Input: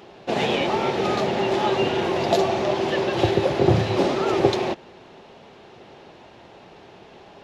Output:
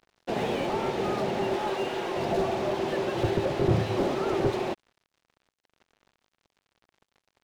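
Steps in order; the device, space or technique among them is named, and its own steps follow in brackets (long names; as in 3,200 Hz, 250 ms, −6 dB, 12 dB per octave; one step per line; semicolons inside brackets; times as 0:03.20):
0:01.56–0:02.16: high-pass filter 380 Hz 6 dB per octave
early transistor amplifier (dead-zone distortion −39.5 dBFS; slew-rate limiting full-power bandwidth 66 Hz)
level −4 dB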